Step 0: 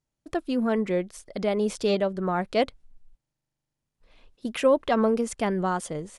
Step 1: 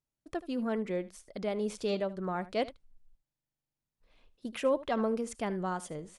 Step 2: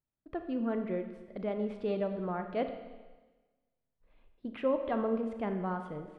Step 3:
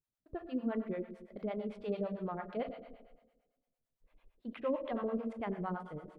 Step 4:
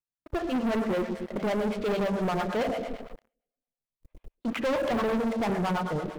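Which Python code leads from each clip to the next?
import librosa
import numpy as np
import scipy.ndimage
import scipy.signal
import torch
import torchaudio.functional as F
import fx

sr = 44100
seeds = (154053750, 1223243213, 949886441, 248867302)

y1 = x + 10.0 ** (-18.0 / 20.0) * np.pad(x, (int(76 * sr / 1000.0), 0))[:len(x)]
y1 = F.gain(torch.from_numpy(y1), -8.0).numpy()
y2 = fx.air_absorb(y1, sr, metres=470.0)
y2 = fx.rev_schroeder(y2, sr, rt60_s=1.3, comb_ms=27, drr_db=7.0)
y3 = fx.harmonic_tremolo(y2, sr, hz=8.9, depth_pct=100, crossover_hz=540.0)
y3 = F.gain(torch.from_numpy(y3), 1.0).numpy()
y4 = fx.leveller(y3, sr, passes=5)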